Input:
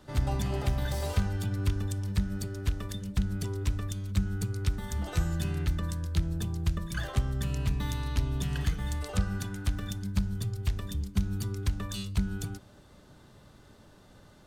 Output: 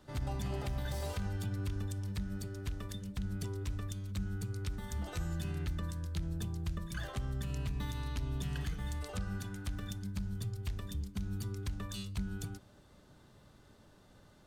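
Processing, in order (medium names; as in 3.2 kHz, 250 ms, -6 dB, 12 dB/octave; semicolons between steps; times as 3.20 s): peak limiter -22.5 dBFS, peak gain reduction 8 dB; trim -5.5 dB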